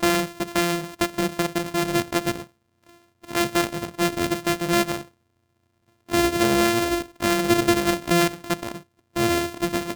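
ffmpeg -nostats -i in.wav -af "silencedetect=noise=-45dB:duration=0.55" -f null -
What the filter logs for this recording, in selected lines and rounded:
silence_start: 5.08
silence_end: 6.09 | silence_duration: 1.00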